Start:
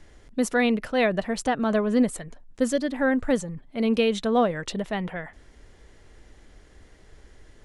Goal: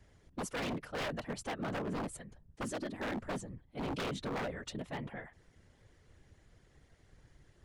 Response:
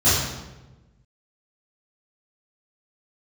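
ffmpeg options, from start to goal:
-af "afftfilt=real='hypot(re,im)*cos(2*PI*random(0))':imag='hypot(re,im)*sin(2*PI*random(1))':win_size=512:overlap=0.75,aeval=exprs='0.0501*(abs(mod(val(0)/0.0501+3,4)-2)-1)':c=same,volume=0.531"

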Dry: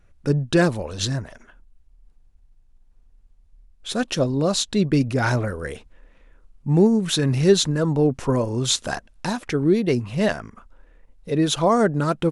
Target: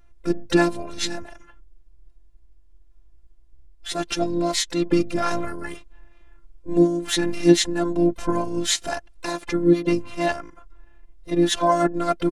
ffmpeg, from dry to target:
-filter_complex "[0:a]afftfilt=real='hypot(re,im)*cos(PI*b)':imag='0':win_size=512:overlap=0.75,asplit=4[s0][s1][s2][s3];[s1]asetrate=22050,aresample=44100,atempo=2,volume=0.355[s4];[s2]asetrate=37084,aresample=44100,atempo=1.18921,volume=0.158[s5];[s3]asetrate=66075,aresample=44100,atempo=0.66742,volume=0.126[s6];[s0][s4][s5][s6]amix=inputs=4:normalize=0,volume=1.33"

